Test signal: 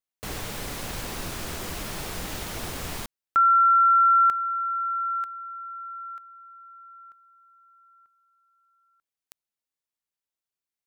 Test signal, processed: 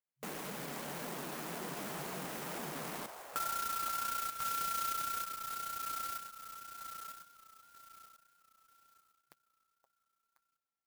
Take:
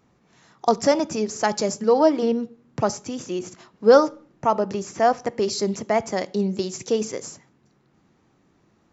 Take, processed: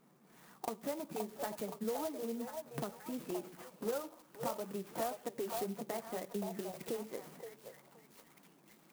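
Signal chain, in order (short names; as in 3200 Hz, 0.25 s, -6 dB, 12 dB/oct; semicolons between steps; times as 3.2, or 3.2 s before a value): FFT band-pass 130–4900 Hz; compressor 5:1, threshold -35 dBFS; flange 1.9 Hz, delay 4 ms, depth 5.8 ms, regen -37%; delay with a stepping band-pass 0.522 s, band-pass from 730 Hz, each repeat 0.7 oct, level -3 dB; clock jitter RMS 0.07 ms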